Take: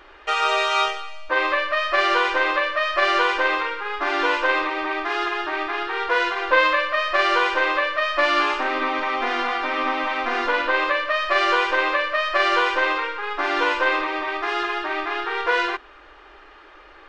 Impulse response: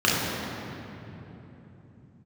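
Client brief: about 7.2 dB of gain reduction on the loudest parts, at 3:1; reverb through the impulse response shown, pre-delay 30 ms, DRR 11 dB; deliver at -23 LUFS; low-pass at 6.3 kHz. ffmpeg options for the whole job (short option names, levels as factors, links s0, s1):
-filter_complex "[0:a]lowpass=6300,acompressor=threshold=0.0631:ratio=3,asplit=2[s0][s1];[1:a]atrim=start_sample=2205,adelay=30[s2];[s1][s2]afir=irnorm=-1:irlink=0,volume=0.0316[s3];[s0][s3]amix=inputs=2:normalize=0,volume=1.41"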